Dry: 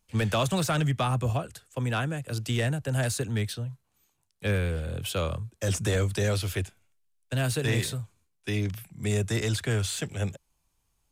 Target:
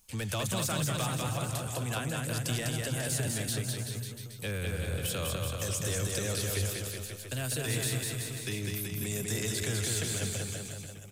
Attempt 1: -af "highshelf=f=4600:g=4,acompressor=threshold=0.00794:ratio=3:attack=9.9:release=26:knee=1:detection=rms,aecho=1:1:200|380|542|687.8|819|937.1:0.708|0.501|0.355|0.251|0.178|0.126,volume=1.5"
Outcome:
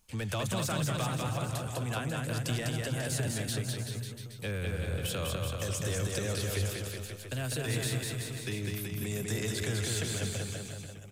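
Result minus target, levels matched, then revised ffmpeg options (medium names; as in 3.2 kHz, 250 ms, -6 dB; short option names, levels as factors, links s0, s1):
8 kHz band -3.0 dB
-af "highshelf=f=4600:g=13,acompressor=threshold=0.00794:ratio=3:attack=9.9:release=26:knee=1:detection=rms,aecho=1:1:200|380|542|687.8|819|937.1:0.708|0.501|0.355|0.251|0.178|0.126,volume=1.5"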